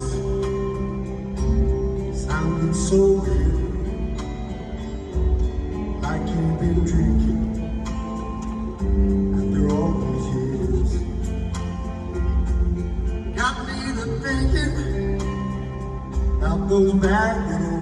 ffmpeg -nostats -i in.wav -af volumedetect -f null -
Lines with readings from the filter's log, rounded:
mean_volume: -21.6 dB
max_volume: -7.3 dB